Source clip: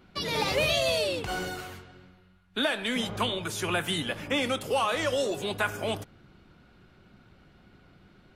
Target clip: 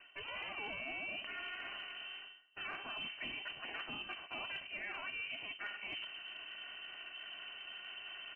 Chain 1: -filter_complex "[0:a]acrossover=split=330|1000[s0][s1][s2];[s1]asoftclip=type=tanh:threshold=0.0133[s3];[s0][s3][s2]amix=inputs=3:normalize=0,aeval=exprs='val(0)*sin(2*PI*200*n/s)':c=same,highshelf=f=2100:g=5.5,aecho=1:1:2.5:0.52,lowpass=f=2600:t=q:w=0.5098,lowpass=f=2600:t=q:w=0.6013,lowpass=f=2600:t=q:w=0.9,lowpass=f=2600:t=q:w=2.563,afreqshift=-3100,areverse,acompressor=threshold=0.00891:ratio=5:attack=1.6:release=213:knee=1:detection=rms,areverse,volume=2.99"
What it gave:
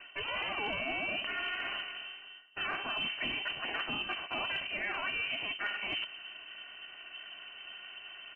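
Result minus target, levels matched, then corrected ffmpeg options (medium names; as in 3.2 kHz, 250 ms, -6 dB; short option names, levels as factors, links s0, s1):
compression: peak gain reduction -9 dB; saturation: distortion +8 dB
-filter_complex "[0:a]acrossover=split=330|1000[s0][s1][s2];[s1]asoftclip=type=tanh:threshold=0.0376[s3];[s0][s3][s2]amix=inputs=3:normalize=0,aeval=exprs='val(0)*sin(2*PI*200*n/s)':c=same,highshelf=f=2100:g=5.5,aecho=1:1:2.5:0.52,lowpass=f=2600:t=q:w=0.5098,lowpass=f=2600:t=q:w=0.6013,lowpass=f=2600:t=q:w=0.9,lowpass=f=2600:t=q:w=2.563,afreqshift=-3100,areverse,acompressor=threshold=0.00266:ratio=5:attack=1.6:release=213:knee=1:detection=rms,areverse,volume=2.99"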